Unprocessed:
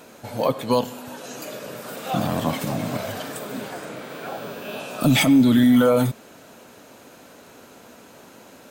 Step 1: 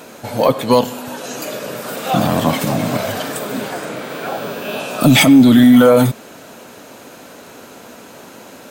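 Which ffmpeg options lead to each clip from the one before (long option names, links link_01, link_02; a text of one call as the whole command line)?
ffmpeg -i in.wav -filter_complex "[0:a]lowshelf=frequency=75:gain=-6,asplit=2[link_01][link_02];[link_02]acontrast=85,volume=2dB[link_03];[link_01][link_03]amix=inputs=2:normalize=0,volume=-3dB" out.wav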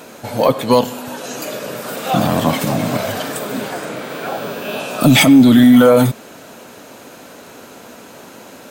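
ffmpeg -i in.wav -af anull out.wav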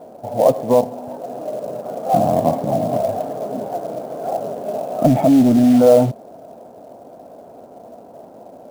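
ffmpeg -i in.wav -af "lowpass=frequency=690:width_type=q:width=4.9,acrusher=bits=5:mode=log:mix=0:aa=0.000001,lowshelf=frequency=460:gain=5,volume=-9.5dB" out.wav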